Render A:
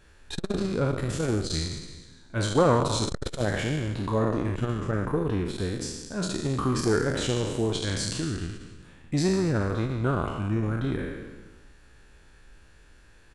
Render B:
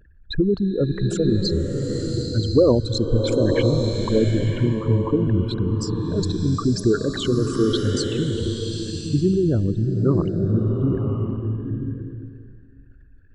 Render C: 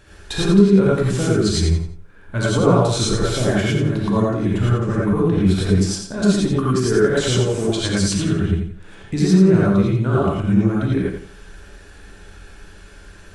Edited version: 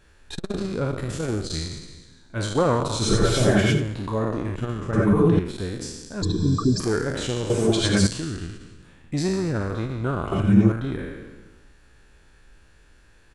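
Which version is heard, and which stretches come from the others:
A
3.04–3.80 s: from C, crossfade 0.16 s
4.93–5.39 s: from C
6.22–6.80 s: from B
7.50–8.07 s: from C
10.32–10.72 s: from C

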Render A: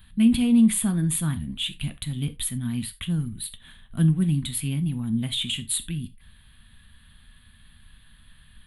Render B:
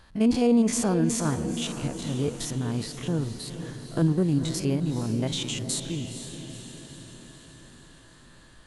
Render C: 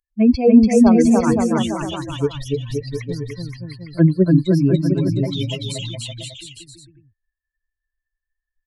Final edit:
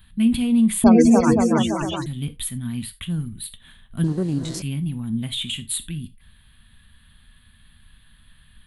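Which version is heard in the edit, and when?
A
0.84–2.06 s: from C
4.04–4.62 s: from B

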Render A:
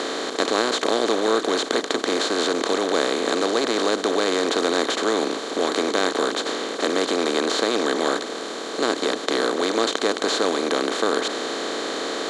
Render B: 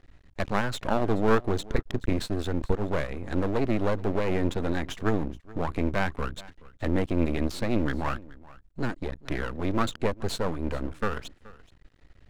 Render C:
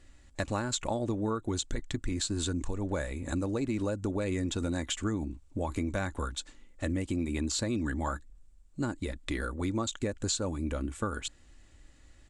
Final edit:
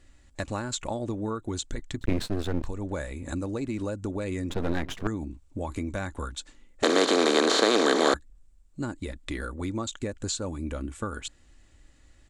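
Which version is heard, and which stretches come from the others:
C
2.01–2.66 s: from B
4.50–5.07 s: from B
6.83–8.14 s: from A

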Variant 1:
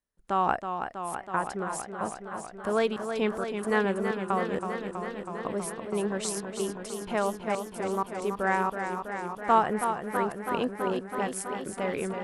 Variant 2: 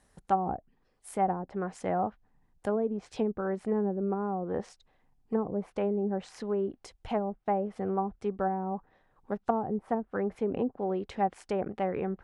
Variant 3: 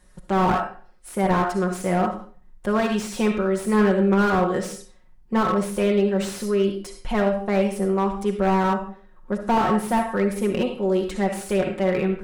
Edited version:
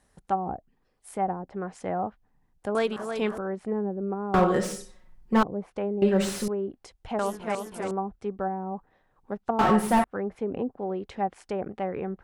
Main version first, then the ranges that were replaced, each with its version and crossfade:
2
2.75–3.38 s: from 1
4.34–5.43 s: from 3
6.02–6.48 s: from 3
7.19–7.91 s: from 1
9.59–10.04 s: from 3

